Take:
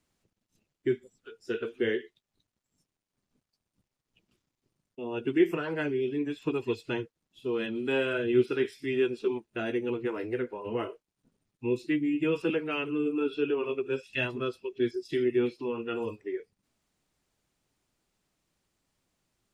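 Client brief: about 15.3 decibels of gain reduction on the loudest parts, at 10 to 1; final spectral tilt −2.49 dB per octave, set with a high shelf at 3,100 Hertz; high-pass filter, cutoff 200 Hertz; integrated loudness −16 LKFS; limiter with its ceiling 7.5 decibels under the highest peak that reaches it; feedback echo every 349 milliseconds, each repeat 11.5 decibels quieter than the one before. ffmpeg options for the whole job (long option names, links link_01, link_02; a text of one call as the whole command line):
ffmpeg -i in.wav -af "highpass=200,highshelf=frequency=3100:gain=-8,acompressor=threshold=-34dB:ratio=10,alimiter=level_in=7.5dB:limit=-24dB:level=0:latency=1,volume=-7.5dB,aecho=1:1:349|698|1047:0.266|0.0718|0.0194,volume=25dB" out.wav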